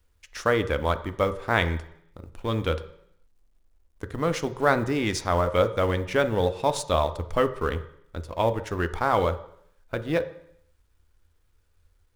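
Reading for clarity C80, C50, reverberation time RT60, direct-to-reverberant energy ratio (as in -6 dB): 17.0 dB, 14.0 dB, 0.70 s, 10.0 dB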